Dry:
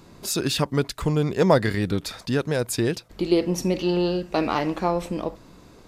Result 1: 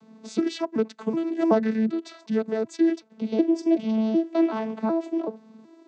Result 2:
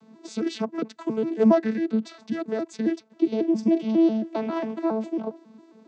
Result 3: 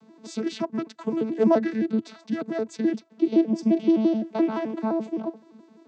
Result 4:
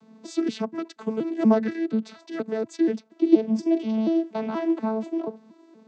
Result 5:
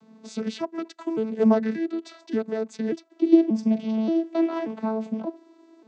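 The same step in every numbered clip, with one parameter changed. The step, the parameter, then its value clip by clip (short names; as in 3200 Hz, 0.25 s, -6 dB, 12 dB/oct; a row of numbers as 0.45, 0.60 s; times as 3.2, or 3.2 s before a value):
arpeggiated vocoder, a note every: 376, 136, 86, 239, 582 ms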